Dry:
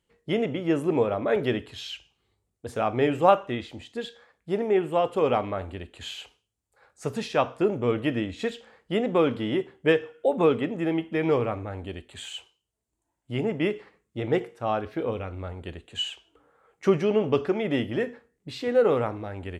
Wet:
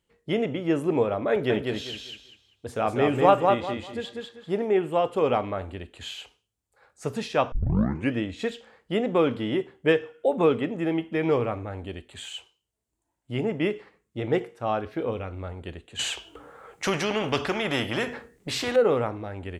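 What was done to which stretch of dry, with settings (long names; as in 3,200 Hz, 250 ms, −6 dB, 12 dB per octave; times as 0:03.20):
0:01.30–0:04.65: repeating echo 196 ms, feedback 26%, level −3.5 dB
0:07.52: tape start 0.62 s
0:15.99–0:18.76: every bin compressed towards the loudest bin 2 to 1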